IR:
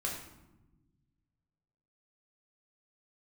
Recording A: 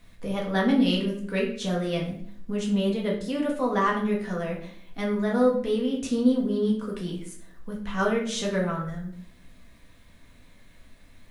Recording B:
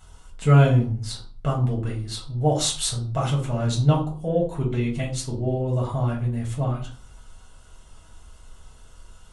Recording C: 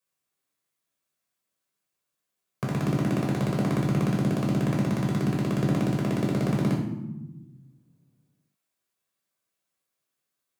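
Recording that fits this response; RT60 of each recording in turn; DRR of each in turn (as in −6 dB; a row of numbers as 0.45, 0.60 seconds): C; 0.60, 0.40, 1.1 seconds; −2.5, −2.5, −2.5 decibels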